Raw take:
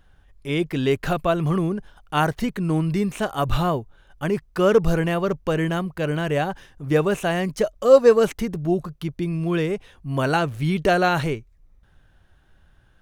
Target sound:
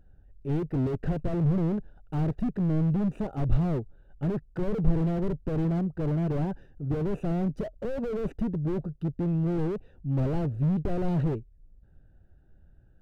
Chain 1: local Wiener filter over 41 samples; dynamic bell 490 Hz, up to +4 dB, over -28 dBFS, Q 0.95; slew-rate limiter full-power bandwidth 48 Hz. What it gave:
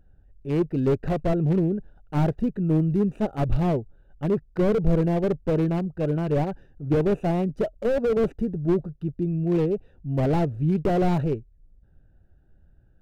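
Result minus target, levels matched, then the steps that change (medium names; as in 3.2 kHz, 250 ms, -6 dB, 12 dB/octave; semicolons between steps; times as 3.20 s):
slew-rate limiter: distortion -5 dB
change: slew-rate limiter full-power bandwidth 14 Hz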